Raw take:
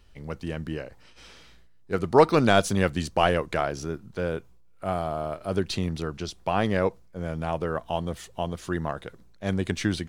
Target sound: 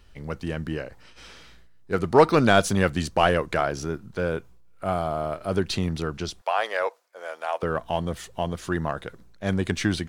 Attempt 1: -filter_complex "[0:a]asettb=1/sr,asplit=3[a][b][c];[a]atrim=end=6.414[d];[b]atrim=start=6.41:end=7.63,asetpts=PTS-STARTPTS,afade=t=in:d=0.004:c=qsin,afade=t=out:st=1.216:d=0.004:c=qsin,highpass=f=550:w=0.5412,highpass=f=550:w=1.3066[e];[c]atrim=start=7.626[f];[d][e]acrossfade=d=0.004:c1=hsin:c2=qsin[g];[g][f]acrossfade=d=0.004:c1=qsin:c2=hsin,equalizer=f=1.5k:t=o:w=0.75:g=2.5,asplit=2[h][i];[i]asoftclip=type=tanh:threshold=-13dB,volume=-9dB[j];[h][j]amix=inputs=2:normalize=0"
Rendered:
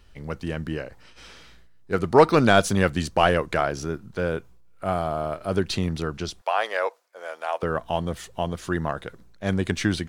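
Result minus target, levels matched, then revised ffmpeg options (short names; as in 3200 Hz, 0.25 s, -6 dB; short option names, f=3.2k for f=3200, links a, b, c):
soft clip: distortion -7 dB
-filter_complex "[0:a]asettb=1/sr,asplit=3[a][b][c];[a]atrim=end=6.414[d];[b]atrim=start=6.41:end=7.63,asetpts=PTS-STARTPTS,afade=t=in:d=0.004:c=qsin,afade=t=out:st=1.216:d=0.004:c=qsin,highpass=f=550:w=0.5412,highpass=f=550:w=1.3066[e];[c]atrim=start=7.626[f];[d][e]acrossfade=d=0.004:c1=hsin:c2=qsin[g];[g][f]acrossfade=d=0.004:c1=qsin:c2=hsin,equalizer=f=1.5k:t=o:w=0.75:g=2.5,asplit=2[h][i];[i]asoftclip=type=tanh:threshold=-22.5dB,volume=-9dB[j];[h][j]amix=inputs=2:normalize=0"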